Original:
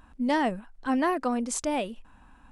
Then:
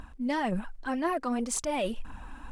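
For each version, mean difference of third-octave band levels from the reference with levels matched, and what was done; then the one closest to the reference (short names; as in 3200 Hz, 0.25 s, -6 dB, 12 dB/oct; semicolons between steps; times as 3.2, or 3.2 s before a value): 5.0 dB: phaser 1.9 Hz, delay 3.8 ms, feedback 48%; reverse; compressor 5:1, threshold -37 dBFS, peak gain reduction 16 dB; reverse; gain +8.5 dB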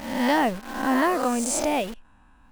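8.5 dB: spectral swells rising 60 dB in 0.80 s; in parallel at +0.5 dB: bit-crush 6-bit; on the sum: gain -4 dB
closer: first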